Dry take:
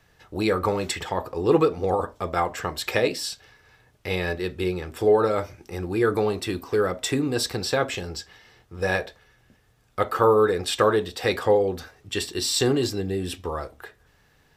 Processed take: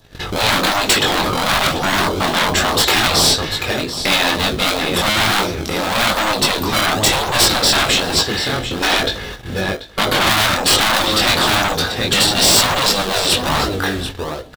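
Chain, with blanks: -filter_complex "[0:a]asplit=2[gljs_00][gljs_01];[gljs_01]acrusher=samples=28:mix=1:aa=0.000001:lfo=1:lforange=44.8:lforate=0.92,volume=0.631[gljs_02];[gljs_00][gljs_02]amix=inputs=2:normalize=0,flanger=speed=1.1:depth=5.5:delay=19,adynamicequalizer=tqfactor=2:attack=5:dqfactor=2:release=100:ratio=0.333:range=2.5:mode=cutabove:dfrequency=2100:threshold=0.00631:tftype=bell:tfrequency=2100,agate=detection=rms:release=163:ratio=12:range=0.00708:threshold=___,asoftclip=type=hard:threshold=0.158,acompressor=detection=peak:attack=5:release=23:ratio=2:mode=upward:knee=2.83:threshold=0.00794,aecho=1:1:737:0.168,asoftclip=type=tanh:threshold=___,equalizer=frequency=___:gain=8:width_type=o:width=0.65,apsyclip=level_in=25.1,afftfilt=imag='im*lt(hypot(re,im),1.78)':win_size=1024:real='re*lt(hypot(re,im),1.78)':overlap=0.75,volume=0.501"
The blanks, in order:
0.00178, 0.0355, 3.7k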